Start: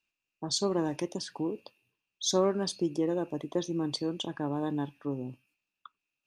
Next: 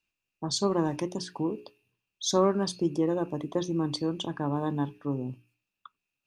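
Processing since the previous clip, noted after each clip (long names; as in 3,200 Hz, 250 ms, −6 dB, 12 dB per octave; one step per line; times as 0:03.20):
low-shelf EQ 230 Hz +8 dB
mains-hum notches 60/120/180/240/300/360/420 Hz
dynamic equaliser 1,100 Hz, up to +6 dB, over −48 dBFS, Q 1.7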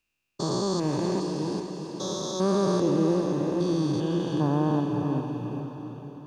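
spectrum averaged block by block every 400 ms
feedback delay with all-pass diffusion 460 ms, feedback 48%, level −6.5 dB
level +6 dB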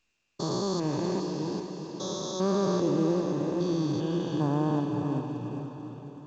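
level −2.5 dB
mu-law 128 kbit/s 16,000 Hz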